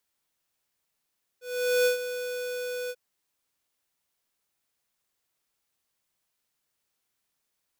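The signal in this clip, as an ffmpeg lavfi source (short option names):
-f lavfi -i "aevalsrc='0.0841*(2*lt(mod(495*t,1),0.5)-1)':d=1.54:s=44100,afade=t=in:d=0.446,afade=t=out:st=0.446:d=0.116:silence=0.266,afade=t=out:st=1.49:d=0.05"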